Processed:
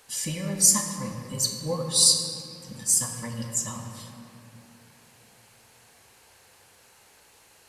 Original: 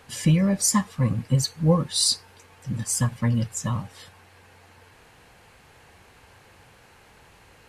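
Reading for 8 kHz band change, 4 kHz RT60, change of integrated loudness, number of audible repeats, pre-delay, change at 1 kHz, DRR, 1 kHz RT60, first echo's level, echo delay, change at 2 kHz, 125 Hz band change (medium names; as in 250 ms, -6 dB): +5.5 dB, 1.4 s, +0.5 dB, no echo, 5 ms, -5.5 dB, 2.0 dB, 2.6 s, no echo, no echo, -5.0 dB, -12.5 dB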